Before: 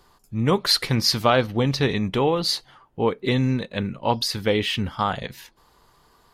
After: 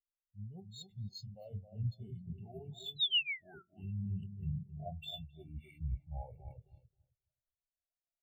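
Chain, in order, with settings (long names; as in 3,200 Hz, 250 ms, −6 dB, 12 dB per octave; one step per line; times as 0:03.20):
gliding playback speed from 95% → 59%
reversed playback
downward compressor 10 to 1, threshold −28 dBFS, peak gain reduction 15.5 dB
reversed playback
tuned comb filter 390 Hz, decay 0.17 s, harmonics odd, mix 80%
bad sample-rate conversion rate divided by 4×, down filtered, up hold
feedback echo with a low-pass in the loop 266 ms, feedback 47%, low-pass 1,500 Hz, level −3.5 dB
sound drawn into the spectrogram fall, 0:02.96–0:03.63, 1,300–4,100 Hz −38 dBFS
flat-topped bell 1,400 Hz −14 dB 1.2 octaves
comb filter 1.4 ms, depth 70%
hum removal 45 Hz, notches 38
every bin expanded away from the loudest bin 2.5 to 1
level +2 dB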